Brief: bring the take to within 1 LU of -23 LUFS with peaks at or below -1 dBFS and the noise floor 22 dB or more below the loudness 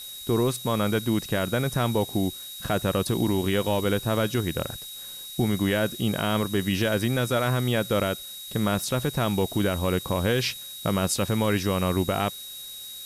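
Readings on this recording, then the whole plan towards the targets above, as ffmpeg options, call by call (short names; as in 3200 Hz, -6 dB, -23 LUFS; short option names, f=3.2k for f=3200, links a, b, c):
steady tone 3800 Hz; tone level -39 dBFS; noise floor -40 dBFS; noise floor target -48 dBFS; loudness -26.0 LUFS; peak -12.0 dBFS; loudness target -23.0 LUFS
-> -af "bandreject=f=3.8k:w=30"
-af "afftdn=nr=8:nf=-40"
-af "volume=3dB"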